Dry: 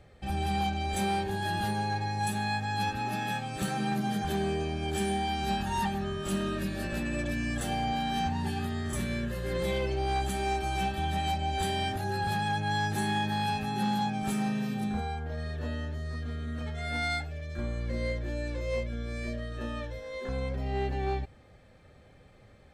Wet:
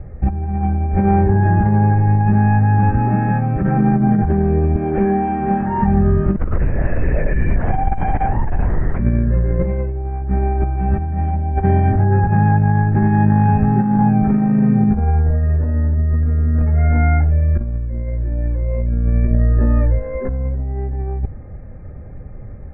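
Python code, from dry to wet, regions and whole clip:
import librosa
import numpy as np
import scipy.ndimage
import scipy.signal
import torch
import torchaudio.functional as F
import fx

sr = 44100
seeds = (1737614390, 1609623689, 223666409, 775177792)

y = fx.chain(x, sr, fx.highpass(hz=220.0, slope=12),
    fx.resample_bad(factor=6, down='none', up='hold'), at=(4.76, 5.82))
y = fx.chain(y, sr, fx.highpass(hz=370.0, slope=12),
    fx.high_shelf(hz=2900.0, db=8.5),
    fx.lpc_vocoder(seeds[0], excitation='whisper', order=10), at=(6.36, 8.99))
y = scipy.signal.sosfilt(scipy.signal.butter(8, 2200.0, 'lowpass', fs=sr, output='sos'), y)
y = fx.tilt_eq(y, sr, slope=-4.0)
y = fx.over_compress(y, sr, threshold_db=-22.0, ratio=-0.5)
y = y * librosa.db_to_amplitude(8.0)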